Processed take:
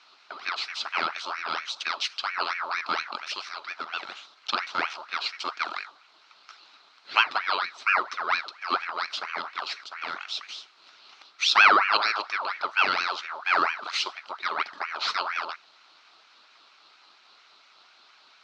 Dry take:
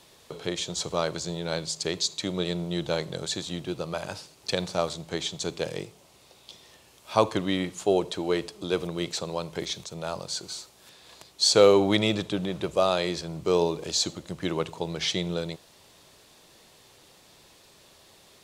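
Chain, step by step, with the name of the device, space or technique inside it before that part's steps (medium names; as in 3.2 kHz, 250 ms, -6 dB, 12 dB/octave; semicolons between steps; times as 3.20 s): 3.16–4.17 s: bass shelf 240 Hz -10.5 dB; voice changer toy (ring modulator with a swept carrier 1.4 kHz, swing 50%, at 4.3 Hz; cabinet simulation 460–4600 Hz, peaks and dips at 510 Hz -8 dB, 1.3 kHz +6 dB, 1.8 kHz -7 dB, 4.1 kHz +8 dB); trim +2.5 dB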